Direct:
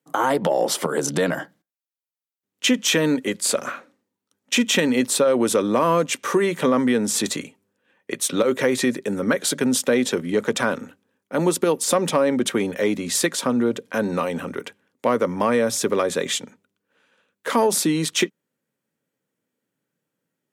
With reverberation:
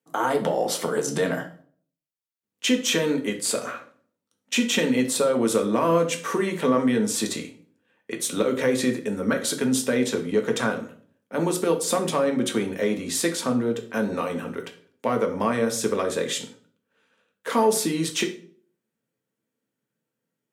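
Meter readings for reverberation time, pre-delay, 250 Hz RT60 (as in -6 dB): 0.50 s, 4 ms, 0.60 s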